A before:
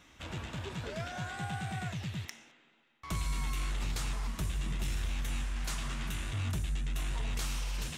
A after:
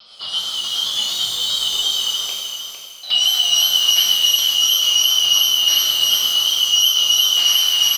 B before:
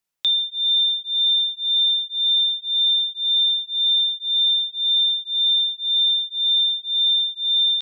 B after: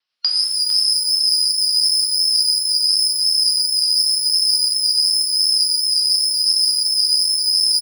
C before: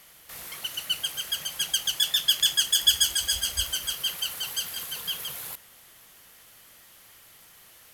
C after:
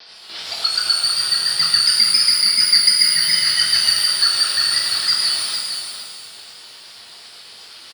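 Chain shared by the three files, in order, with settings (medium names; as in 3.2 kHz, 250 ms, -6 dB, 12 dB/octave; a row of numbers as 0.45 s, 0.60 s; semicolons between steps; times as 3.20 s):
four frequency bands reordered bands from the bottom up 2413; steep low-pass 5.3 kHz 96 dB/octave; tilt EQ +4 dB/octave; compression 4:1, threshold -23 dBFS; tremolo 8 Hz, depth 38%; vibrato 2.8 Hz 63 cents; bass shelf 110 Hz +7.5 dB; feedback delay 455 ms, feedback 21%, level -7.5 dB; pitch-shifted reverb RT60 1.2 s, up +12 st, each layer -8 dB, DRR -1 dB; normalise loudness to -14 LUFS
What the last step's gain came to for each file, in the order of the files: +8.0 dB, +2.0 dB, +8.5 dB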